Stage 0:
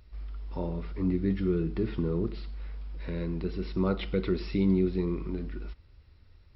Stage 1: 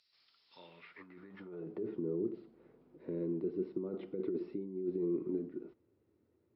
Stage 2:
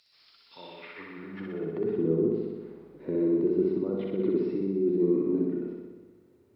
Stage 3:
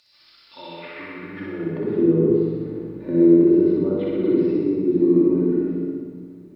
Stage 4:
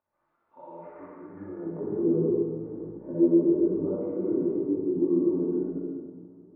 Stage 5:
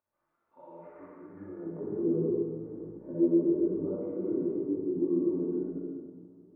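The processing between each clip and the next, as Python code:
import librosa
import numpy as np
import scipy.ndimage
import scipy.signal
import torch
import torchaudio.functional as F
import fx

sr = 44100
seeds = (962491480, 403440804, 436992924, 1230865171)

y1 = scipy.signal.sosfilt(scipy.signal.butter(4, 100.0, 'highpass', fs=sr, output='sos'), x)
y1 = fx.over_compress(y1, sr, threshold_db=-31.0, ratio=-1.0)
y1 = fx.filter_sweep_bandpass(y1, sr, from_hz=4700.0, to_hz=350.0, start_s=0.43, end_s=1.98, q=2.6)
y2 = fx.room_flutter(y1, sr, wall_m=10.6, rt60_s=1.3)
y2 = y2 * librosa.db_to_amplitude(8.5)
y3 = fx.room_shoebox(y2, sr, seeds[0], volume_m3=1600.0, walls='mixed', distance_m=2.5)
y3 = y3 * librosa.db_to_amplitude(3.5)
y4 = scipy.signal.sosfilt(scipy.signal.butter(4, 1000.0, 'lowpass', fs=sr, output='sos'), y3)
y4 = fx.low_shelf(y4, sr, hz=500.0, db=-9.0)
y4 = fx.detune_double(y4, sr, cents=36)
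y4 = y4 * librosa.db_to_amplitude(2.5)
y5 = fx.peak_eq(y4, sr, hz=870.0, db=-3.0, octaves=0.55)
y5 = y5 * librosa.db_to_amplitude(-4.0)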